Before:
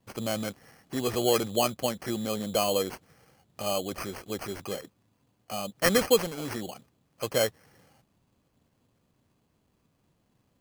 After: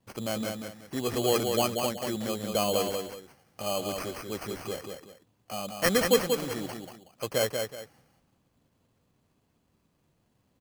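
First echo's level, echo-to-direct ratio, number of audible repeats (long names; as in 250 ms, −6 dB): −5.0 dB, −4.5 dB, 2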